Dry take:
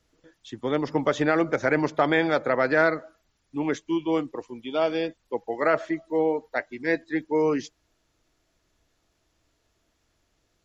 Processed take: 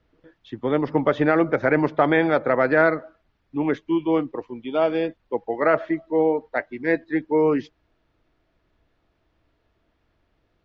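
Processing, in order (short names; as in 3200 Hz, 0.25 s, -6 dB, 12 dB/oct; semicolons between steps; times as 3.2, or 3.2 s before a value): air absorption 320 m; gain +4.5 dB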